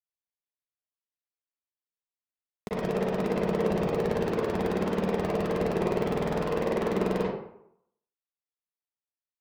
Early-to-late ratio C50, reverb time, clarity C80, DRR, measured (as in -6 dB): -3.0 dB, 0.75 s, 3.5 dB, -9.0 dB